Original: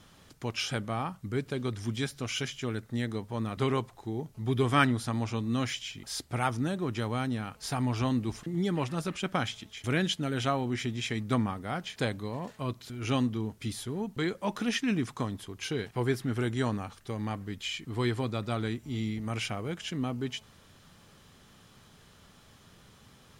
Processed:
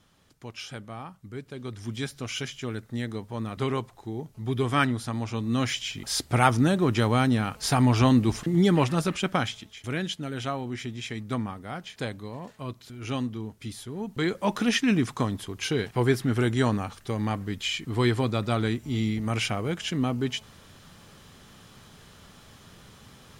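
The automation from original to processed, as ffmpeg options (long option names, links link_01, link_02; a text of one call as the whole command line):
ffmpeg -i in.wav -af "volume=17dB,afade=type=in:start_time=1.51:duration=0.55:silence=0.446684,afade=type=in:start_time=5.26:duration=1.04:silence=0.375837,afade=type=out:start_time=8.74:duration=1.07:silence=0.281838,afade=type=in:start_time=13.91:duration=0.5:silence=0.398107" out.wav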